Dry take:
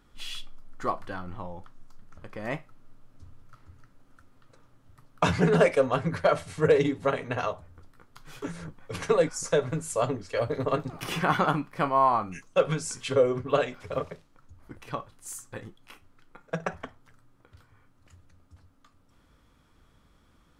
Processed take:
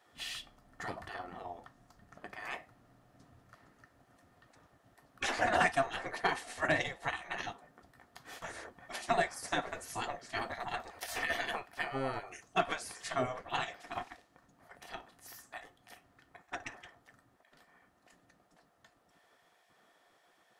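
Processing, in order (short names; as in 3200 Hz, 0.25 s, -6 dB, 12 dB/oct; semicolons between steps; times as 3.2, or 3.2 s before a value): spectral gate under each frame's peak -15 dB weak; small resonant body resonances 710/1800 Hz, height 12 dB, ringing for 35 ms; gain -1 dB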